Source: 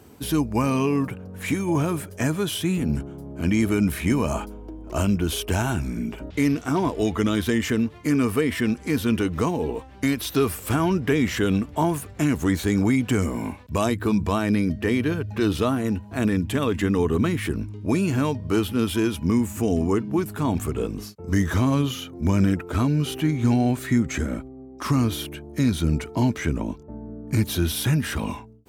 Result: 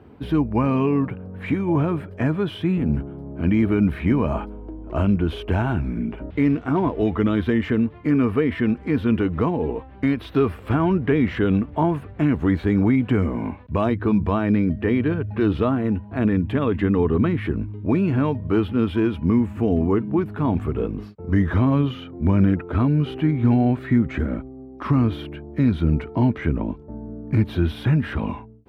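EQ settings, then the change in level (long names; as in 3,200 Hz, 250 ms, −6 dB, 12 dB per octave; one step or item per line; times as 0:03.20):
high-frequency loss of the air 470 metres
+3.0 dB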